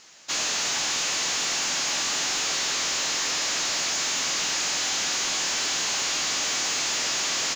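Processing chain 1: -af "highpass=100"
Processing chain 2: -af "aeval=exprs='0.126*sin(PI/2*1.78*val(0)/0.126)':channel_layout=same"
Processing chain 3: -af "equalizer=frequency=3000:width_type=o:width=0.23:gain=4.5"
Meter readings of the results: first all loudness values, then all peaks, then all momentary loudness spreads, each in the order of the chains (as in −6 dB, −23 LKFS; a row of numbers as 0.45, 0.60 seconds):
−23.5, −18.0, −23.0 LKFS; −17.5, −18.0, −17.0 dBFS; 0, 0, 0 LU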